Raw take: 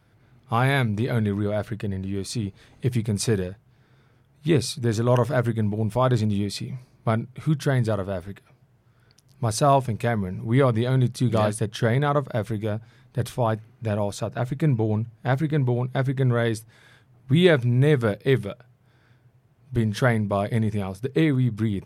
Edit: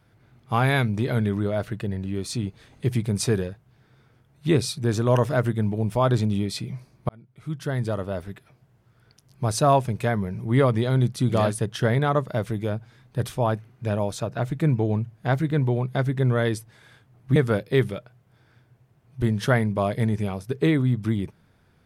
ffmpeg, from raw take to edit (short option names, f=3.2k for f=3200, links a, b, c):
-filter_complex "[0:a]asplit=3[a][b][c];[a]atrim=end=7.09,asetpts=PTS-STARTPTS,afade=t=out:st=7.086:d=0.004:c=hsin[d];[b]atrim=start=7.09:end=17.362,asetpts=PTS-STARTPTS,afade=t=in:d=1.12[e];[c]atrim=start=17.898[f];[d][e]concat=n=2:v=0:a=1[g];[g][f]acrossfade=d=0.004:c1=hsin:c2=hsin"